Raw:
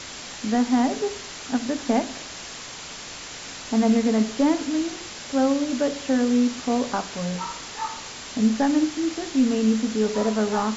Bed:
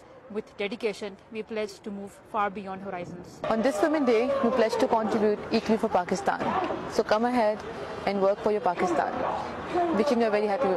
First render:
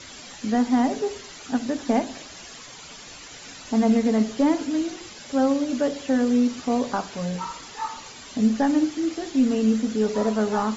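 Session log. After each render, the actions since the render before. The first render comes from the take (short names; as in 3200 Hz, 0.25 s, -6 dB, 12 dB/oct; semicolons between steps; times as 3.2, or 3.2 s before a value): denoiser 10 dB, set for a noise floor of -38 dBFS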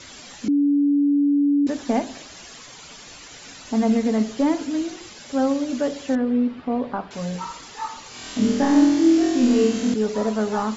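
0.48–1.67 bleep 286 Hz -15 dBFS; 6.15–7.11 air absorption 440 m; 8.09–9.94 flutter echo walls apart 4.2 m, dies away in 1.1 s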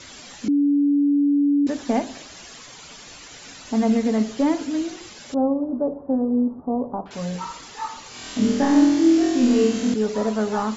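5.34–7.06 steep low-pass 1000 Hz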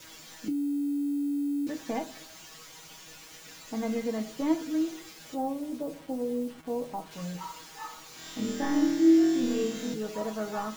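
bit-crush 7-bit; resonator 160 Hz, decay 0.16 s, harmonics all, mix 90%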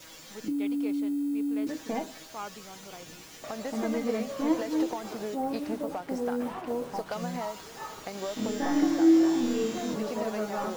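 add bed -12 dB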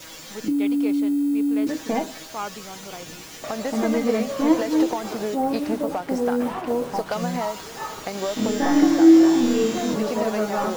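gain +8 dB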